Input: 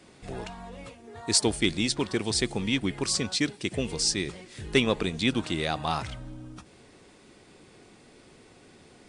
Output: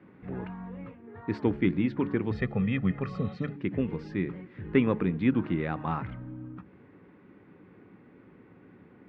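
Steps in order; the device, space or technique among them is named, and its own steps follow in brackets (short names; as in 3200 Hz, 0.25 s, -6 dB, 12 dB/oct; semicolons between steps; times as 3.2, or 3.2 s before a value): de-hum 71.49 Hz, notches 6; 3.15–3.42 spectral repair 1400–4100 Hz before; 2.31–3.56 comb 1.6 ms, depth 87%; bass cabinet (speaker cabinet 65–2000 Hz, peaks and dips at 110 Hz +4 dB, 180 Hz +8 dB, 280 Hz +6 dB, 680 Hz -8 dB); gain -1.5 dB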